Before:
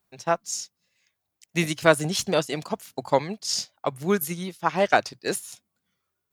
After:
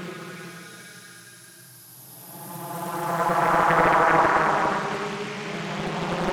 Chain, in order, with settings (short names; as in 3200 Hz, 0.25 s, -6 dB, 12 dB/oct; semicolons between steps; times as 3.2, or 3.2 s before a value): split-band echo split 770 Hz, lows 0.593 s, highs 0.384 s, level -16 dB; Paulstretch 25×, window 0.10 s, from 4.51; Doppler distortion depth 0.88 ms; gain +2 dB